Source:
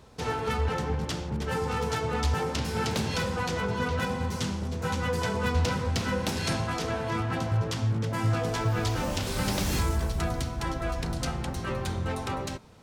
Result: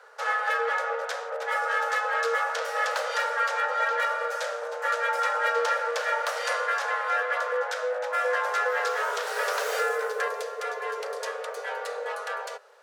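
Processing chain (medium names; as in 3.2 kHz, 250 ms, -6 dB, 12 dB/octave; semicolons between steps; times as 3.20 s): frequency shift +390 Hz; peaking EQ 1.5 kHz +14.5 dB 0.81 oct, from 10.28 s +7 dB; trim -4 dB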